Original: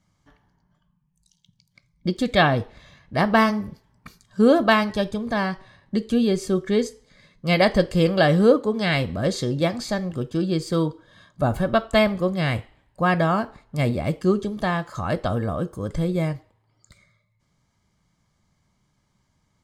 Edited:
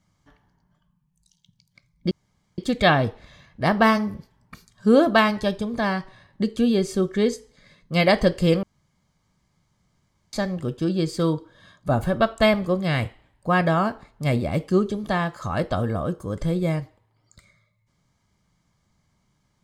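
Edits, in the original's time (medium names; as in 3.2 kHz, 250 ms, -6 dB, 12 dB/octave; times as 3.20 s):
2.11 s: insert room tone 0.47 s
8.16–9.86 s: room tone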